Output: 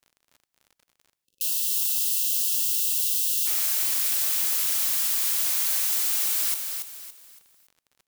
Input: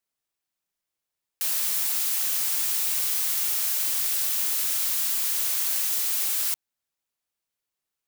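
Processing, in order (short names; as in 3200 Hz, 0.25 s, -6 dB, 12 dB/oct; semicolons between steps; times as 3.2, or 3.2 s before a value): feedback echo 0.282 s, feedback 34%, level -6 dB; crackle 56/s -43 dBFS; spectral delete 1.25–3.46, 550–2600 Hz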